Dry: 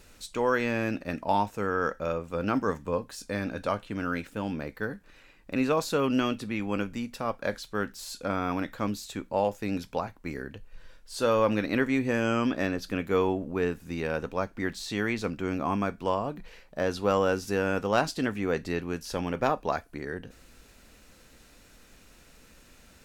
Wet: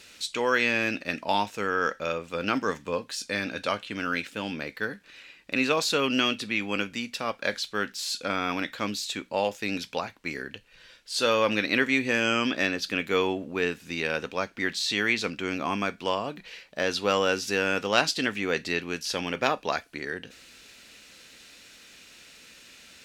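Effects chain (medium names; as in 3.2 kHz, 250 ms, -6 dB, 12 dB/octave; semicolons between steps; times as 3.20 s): frequency weighting D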